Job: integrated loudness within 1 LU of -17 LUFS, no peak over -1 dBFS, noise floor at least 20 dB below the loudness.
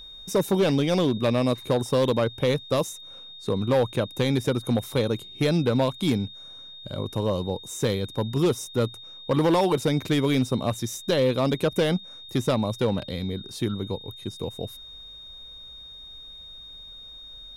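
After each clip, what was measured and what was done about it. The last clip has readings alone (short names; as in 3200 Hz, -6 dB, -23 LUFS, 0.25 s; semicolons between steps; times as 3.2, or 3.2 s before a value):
clipped 1.2%; flat tops at -15.5 dBFS; steady tone 3700 Hz; tone level -41 dBFS; loudness -25.5 LUFS; peak -15.5 dBFS; loudness target -17.0 LUFS
-> clip repair -15.5 dBFS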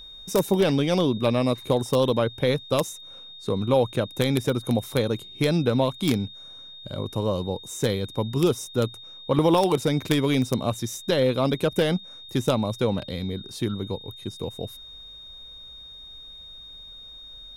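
clipped 0.0%; steady tone 3700 Hz; tone level -41 dBFS
-> notch 3700 Hz, Q 30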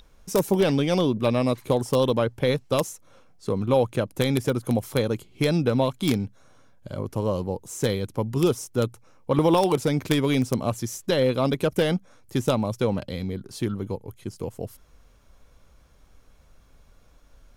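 steady tone none; loudness -25.0 LUFS; peak -6.5 dBFS; loudness target -17.0 LUFS
-> gain +8 dB; limiter -1 dBFS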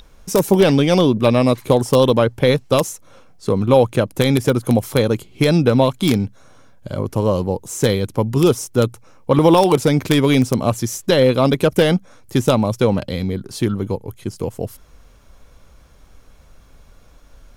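loudness -17.0 LUFS; peak -1.0 dBFS; noise floor -48 dBFS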